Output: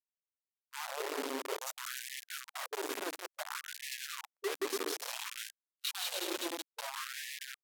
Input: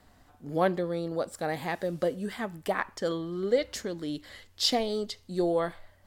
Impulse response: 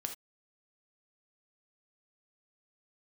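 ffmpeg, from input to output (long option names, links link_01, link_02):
-filter_complex "[0:a]highshelf=frequency=8900:gain=11,bandreject=frequency=60:width_type=h:width=6,bandreject=frequency=120:width_type=h:width=6,bandreject=frequency=180:width_type=h:width=6,bandreject=frequency=240:width_type=h:width=6,bandreject=frequency=300:width_type=h:width=6,bandreject=frequency=360:width_type=h:width=6,bandreject=frequency=420:width_type=h:width=6,asplit=2[link_01][link_02];[link_02]aecho=0:1:140|231|290.2|328.6|353.6:0.631|0.398|0.251|0.158|0.1[link_03];[link_01][link_03]amix=inputs=2:normalize=0,adynamicequalizer=threshold=0.00891:dfrequency=460:dqfactor=7.1:tfrequency=460:tqfactor=7.1:attack=5:release=100:ratio=0.375:range=3:mode=boostabove:tftype=bell,areverse,acompressor=threshold=-38dB:ratio=5,areverse,acrusher=bits=5:mix=0:aa=0.000001,agate=range=-44dB:threshold=-43dB:ratio=16:detection=peak,asetrate=35060,aresample=44100,afftfilt=real='re*gte(b*sr/1024,240*pow(1700/240,0.5+0.5*sin(2*PI*0.58*pts/sr)))':imag='im*gte(b*sr/1024,240*pow(1700/240,0.5+0.5*sin(2*PI*0.58*pts/sr)))':win_size=1024:overlap=0.75,volume=1dB"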